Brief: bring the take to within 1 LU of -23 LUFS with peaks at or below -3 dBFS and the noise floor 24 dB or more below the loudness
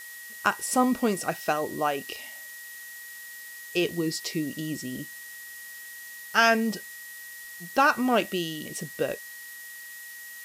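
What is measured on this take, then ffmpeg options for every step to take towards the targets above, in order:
steady tone 1900 Hz; tone level -42 dBFS; noise floor -43 dBFS; noise floor target -51 dBFS; loudness -27.0 LUFS; peak -7.5 dBFS; loudness target -23.0 LUFS
-> -af "bandreject=f=1.9k:w=30"
-af "afftdn=nr=8:nf=-43"
-af "volume=4dB"

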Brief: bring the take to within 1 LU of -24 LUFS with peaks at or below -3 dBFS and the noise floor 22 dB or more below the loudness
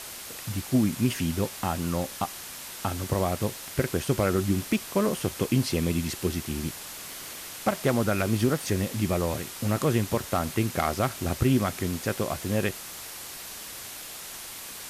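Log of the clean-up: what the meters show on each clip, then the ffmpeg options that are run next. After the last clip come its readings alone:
noise floor -40 dBFS; noise floor target -51 dBFS; loudness -28.5 LUFS; peak -11.5 dBFS; loudness target -24.0 LUFS
-> -af "afftdn=nr=11:nf=-40"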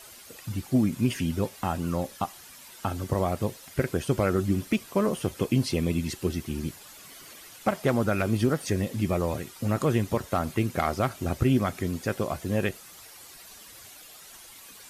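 noise floor -48 dBFS; noise floor target -50 dBFS
-> -af "afftdn=nr=6:nf=-48"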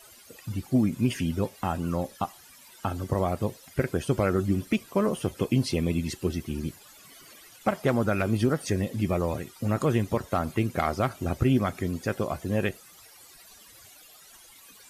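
noise floor -52 dBFS; loudness -28.0 LUFS; peak -12.0 dBFS; loudness target -24.0 LUFS
-> -af "volume=4dB"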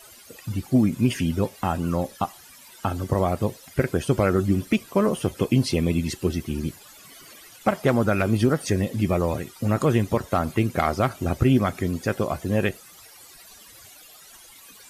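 loudness -24.0 LUFS; peak -8.0 dBFS; noise floor -48 dBFS

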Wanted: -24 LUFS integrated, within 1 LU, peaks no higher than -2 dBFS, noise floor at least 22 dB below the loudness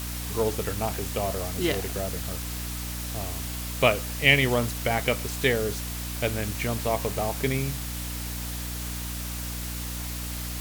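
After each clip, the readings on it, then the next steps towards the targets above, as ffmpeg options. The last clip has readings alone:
hum 60 Hz; harmonics up to 300 Hz; hum level -32 dBFS; noise floor -33 dBFS; noise floor target -50 dBFS; loudness -27.5 LUFS; peak -2.5 dBFS; loudness target -24.0 LUFS
-> -af "bandreject=f=60:t=h:w=6,bandreject=f=120:t=h:w=6,bandreject=f=180:t=h:w=6,bandreject=f=240:t=h:w=6,bandreject=f=300:t=h:w=6"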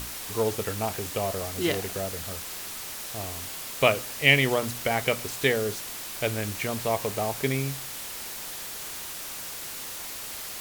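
hum none; noise floor -37 dBFS; noise floor target -50 dBFS
-> -af "afftdn=nr=13:nf=-37"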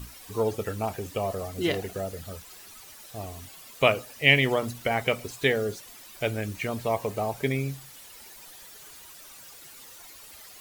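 noise floor -48 dBFS; noise floor target -49 dBFS
-> -af "afftdn=nr=6:nf=-48"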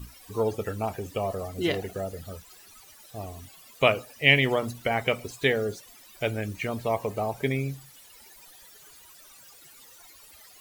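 noise floor -52 dBFS; loudness -27.0 LUFS; peak -2.5 dBFS; loudness target -24.0 LUFS
-> -af "volume=3dB,alimiter=limit=-2dB:level=0:latency=1"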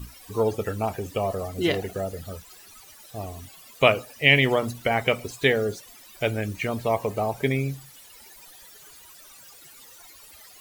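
loudness -24.5 LUFS; peak -2.0 dBFS; noise floor -49 dBFS

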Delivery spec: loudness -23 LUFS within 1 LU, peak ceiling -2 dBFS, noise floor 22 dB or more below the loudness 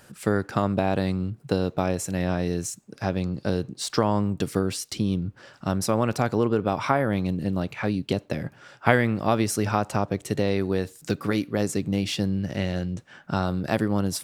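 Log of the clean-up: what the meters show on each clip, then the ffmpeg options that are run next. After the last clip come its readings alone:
loudness -26.0 LUFS; peak -1.5 dBFS; loudness target -23.0 LUFS
-> -af "volume=3dB,alimiter=limit=-2dB:level=0:latency=1"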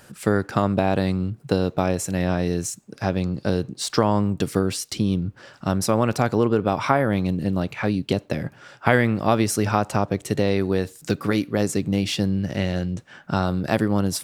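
loudness -23.0 LUFS; peak -2.0 dBFS; noise floor -52 dBFS

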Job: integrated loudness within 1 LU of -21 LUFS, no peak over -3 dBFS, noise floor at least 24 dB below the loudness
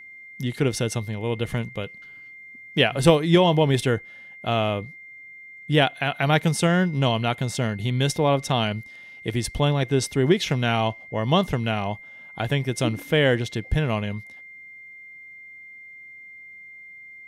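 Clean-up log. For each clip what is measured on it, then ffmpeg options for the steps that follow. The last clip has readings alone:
steady tone 2100 Hz; tone level -41 dBFS; loudness -23.0 LUFS; peak -3.5 dBFS; loudness target -21.0 LUFS
-> -af "bandreject=f=2.1k:w=30"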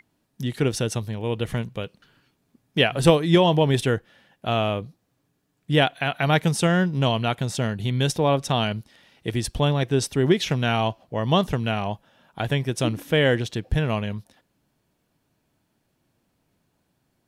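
steady tone none; loudness -23.0 LUFS; peak -3.5 dBFS; loudness target -21.0 LUFS
-> -af "volume=2dB,alimiter=limit=-3dB:level=0:latency=1"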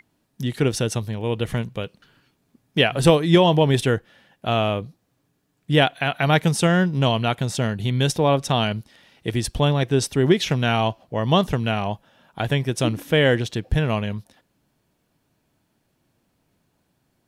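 loudness -21.5 LUFS; peak -3.0 dBFS; noise floor -70 dBFS

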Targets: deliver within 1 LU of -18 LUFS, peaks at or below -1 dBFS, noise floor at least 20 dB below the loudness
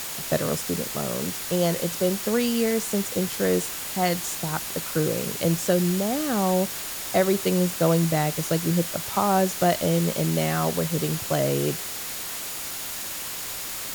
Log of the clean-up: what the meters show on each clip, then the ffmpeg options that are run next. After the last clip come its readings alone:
steady tone 6900 Hz; tone level -45 dBFS; noise floor -33 dBFS; noise floor target -45 dBFS; loudness -24.5 LUFS; peak -8.5 dBFS; loudness target -18.0 LUFS
-> -af "bandreject=f=6.9k:w=30"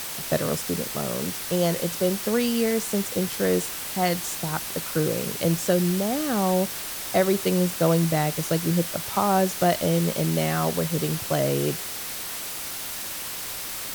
steady tone none; noise floor -33 dBFS; noise floor target -45 dBFS
-> -af "afftdn=nr=12:nf=-33"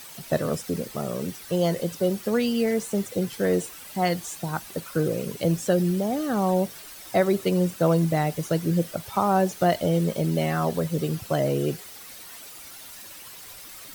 noise floor -43 dBFS; noise floor target -46 dBFS
-> -af "afftdn=nr=6:nf=-43"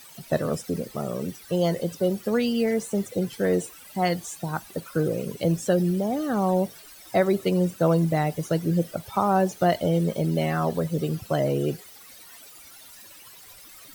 noise floor -48 dBFS; loudness -25.5 LUFS; peak -9.0 dBFS; loudness target -18.0 LUFS
-> -af "volume=7.5dB"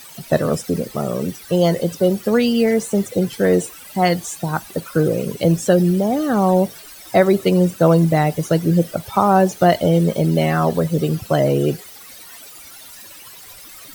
loudness -18.0 LUFS; peak -1.5 dBFS; noise floor -40 dBFS

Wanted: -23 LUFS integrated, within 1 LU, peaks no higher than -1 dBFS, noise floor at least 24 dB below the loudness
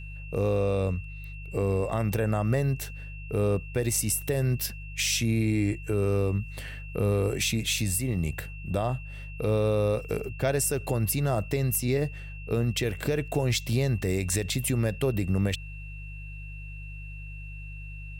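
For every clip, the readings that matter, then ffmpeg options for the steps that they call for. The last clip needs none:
hum 50 Hz; harmonics up to 150 Hz; hum level -38 dBFS; steady tone 2700 Hz; tone level -45 dBFS; loudness -28.0 LUFS; peak -14.5 dBFS; loudness target -23.0 LUFS
-> -af "bandreject=f=50:t=h:w=4,bandreject=f=100:t=h:w=4,bandreject=f=150:t=h:w=4"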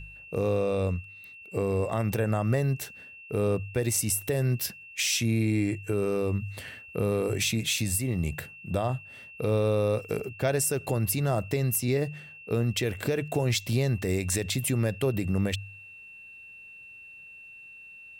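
hum none; steady tone 2700 Hz; tone level -45 dBFS
-> -af "bandreject=f=2.7k:w=30"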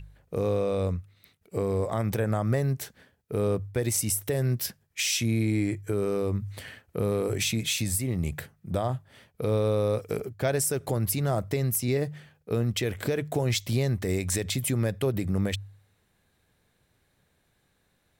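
steady tone none; loudness -28.0 LUFS; peak -14.0 dBFS; loudness target -23.0 LUFS
-> -af "volume=5dB"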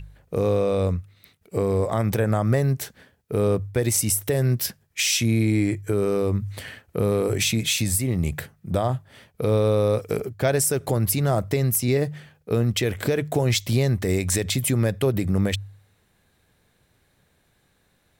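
loudness -23.0 LUFS; peak -9.0 dBFS; noise floor -66 dBFS

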